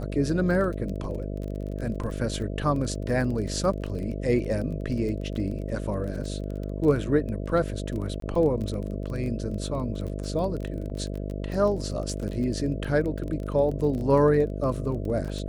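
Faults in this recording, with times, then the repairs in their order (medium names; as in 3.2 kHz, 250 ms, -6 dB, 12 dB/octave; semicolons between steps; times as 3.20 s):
buzz 50 Hz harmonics 13 -32 dBFS
crackle 24 per s -32 dBFS
8.20–8.22 s: dropout 23 ms
10.90–10.91 s: dropout 6.5 ms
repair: de-click; de-hum 50 Hz, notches 13; interpolate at 8.20 s, 23 ms; interpolate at 10.90 s, 6.5 ms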